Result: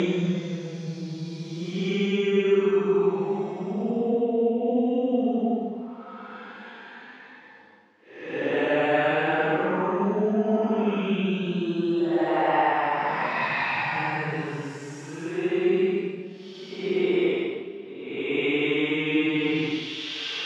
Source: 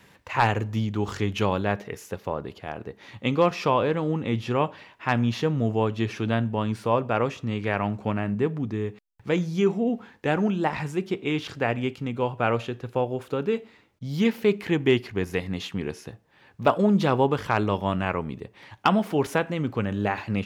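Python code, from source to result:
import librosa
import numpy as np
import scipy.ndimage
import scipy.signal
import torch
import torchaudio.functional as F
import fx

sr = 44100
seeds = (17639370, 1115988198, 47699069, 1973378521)

y = fx.paulstretch(x, sr, seeds[0], factor=9.8, window_s=0.1, from_s=9.38)
y = fx.bandpass_edges(y, sr, low_hz=290.0, high_hz=4000.0)
y = fx.rider(y, sr, range_db=3, speed_s=0.5)
y = y * librosa.db_to_amplitude(3.5)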